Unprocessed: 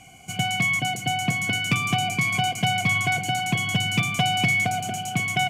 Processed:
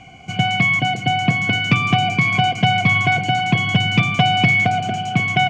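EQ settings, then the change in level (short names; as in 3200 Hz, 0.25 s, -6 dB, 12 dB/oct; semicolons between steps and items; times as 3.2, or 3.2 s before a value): air absorption 180 m; +8.0 dB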